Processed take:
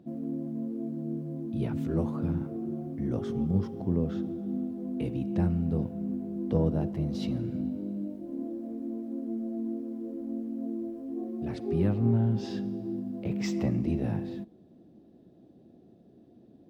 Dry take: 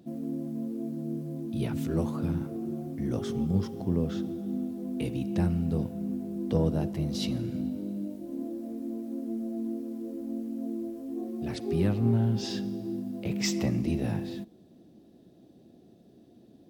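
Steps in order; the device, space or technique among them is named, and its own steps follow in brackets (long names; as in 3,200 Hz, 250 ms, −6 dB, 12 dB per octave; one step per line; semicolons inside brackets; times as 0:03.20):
through cloth (high-shelf EQ 2,900 Hz −14 dB)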